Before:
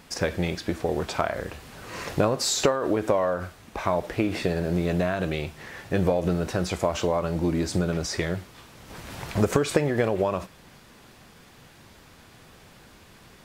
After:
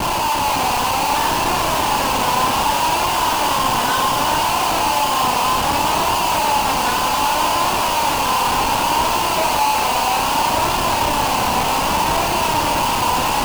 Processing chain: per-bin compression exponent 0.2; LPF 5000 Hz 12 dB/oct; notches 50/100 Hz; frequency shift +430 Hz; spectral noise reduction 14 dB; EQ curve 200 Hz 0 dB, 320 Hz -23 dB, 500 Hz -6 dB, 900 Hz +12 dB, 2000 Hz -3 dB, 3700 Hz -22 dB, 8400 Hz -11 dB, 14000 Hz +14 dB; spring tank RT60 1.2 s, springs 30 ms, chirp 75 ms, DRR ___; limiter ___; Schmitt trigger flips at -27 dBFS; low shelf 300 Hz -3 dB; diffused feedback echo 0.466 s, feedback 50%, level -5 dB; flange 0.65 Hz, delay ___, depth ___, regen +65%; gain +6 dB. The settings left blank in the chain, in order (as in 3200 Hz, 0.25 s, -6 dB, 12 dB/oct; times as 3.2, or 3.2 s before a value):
-0.5 dB, -10 dBFS, 2.8 ms, 1.3 ms